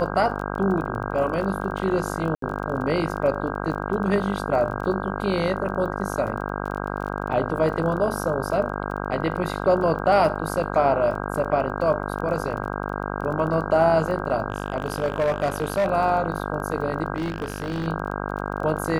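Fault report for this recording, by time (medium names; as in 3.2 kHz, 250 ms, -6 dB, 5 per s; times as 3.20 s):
buzz 50 Hz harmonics 32 -29 dBFS
crackle 22 per s -32 dBFS
2.35–2.42 s: dropout 73 ms
14.50–15.88 s: clipped -17.5 dBFS
17.16–17.88 s: clipped -22.5 dBFS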